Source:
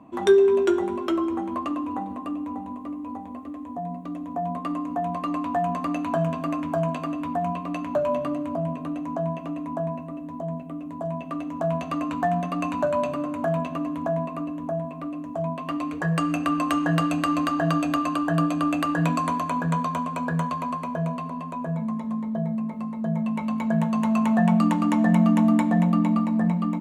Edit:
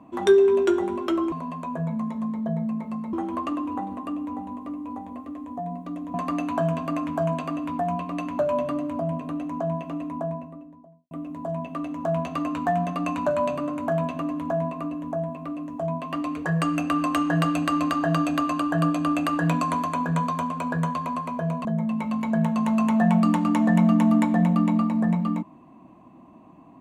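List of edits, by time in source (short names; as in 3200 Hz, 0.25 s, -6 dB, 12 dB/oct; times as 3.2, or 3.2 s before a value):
4.33–5.7 cut
9.56–10.67 studio fade out
21.21–23.02 move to 1.32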